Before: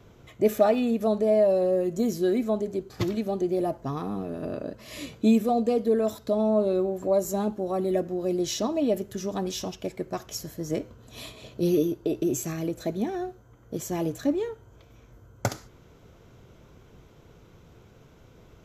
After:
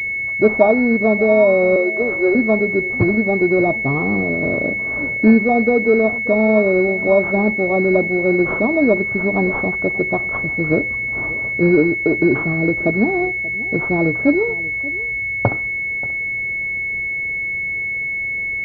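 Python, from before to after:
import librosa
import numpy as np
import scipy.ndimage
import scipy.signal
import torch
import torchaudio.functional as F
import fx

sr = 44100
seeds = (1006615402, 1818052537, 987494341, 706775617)

p1 = fx.block_float(x, sr, bits=5)
p2 = fx.highpass(p1, sr, hz=350.0, slope=24, at=(1.76, 2.35))
p3 = fx.rider(p2, sr, range_db=4, speed_s=0.5)
p4 = p2 + F.gain(torch.from_numpy(p3), -2.5).numpy()
p5 = p4 + 10.0 ** (-18.5 / 20.0) * np.pad(p4, (int(583 * sr / 1000.0), 0))[:len(p4)]
p6 = fx.pwm(p5, sr, carrier_hz=2200.0)
y = F.gain(torch.from_numpy(p6), 5.0).numpy()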